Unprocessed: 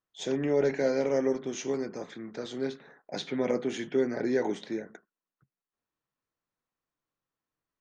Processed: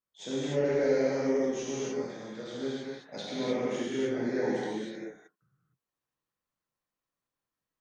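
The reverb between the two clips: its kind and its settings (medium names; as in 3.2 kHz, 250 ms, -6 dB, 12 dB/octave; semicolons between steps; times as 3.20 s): gated-style reverb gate 330 ms flat, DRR -7.5 dB; trim -8.5 dB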